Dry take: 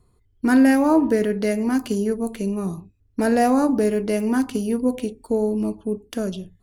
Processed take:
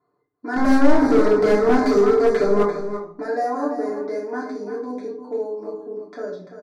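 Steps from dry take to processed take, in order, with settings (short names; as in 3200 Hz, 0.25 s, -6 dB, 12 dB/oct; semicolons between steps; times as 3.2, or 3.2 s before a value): HPF 430 Hz 12 dB/oct; low-pass opened by the level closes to 2700 Hz, open at -16 dBFS; comb 6.8 ms, depth 69%; compressor 1.5:1, threshold -30 dBFS, peak gain reduction 6.5 dB; 0.56–2.63 sample leveller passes 5; Butterworth band-stop 2900 Hz, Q 1.3; air absorption 95 m; echo 0.341 s -10 dB; shoebox room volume 460 m³, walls furnished, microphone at 3.1 m; slew limiter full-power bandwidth 240 Hz; gain -4.5 dB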